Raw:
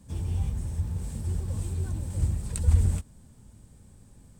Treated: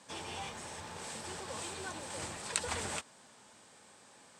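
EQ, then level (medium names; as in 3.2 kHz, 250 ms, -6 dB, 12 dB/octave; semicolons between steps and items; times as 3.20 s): band-pass 770–5400 Hz; +11.5 dB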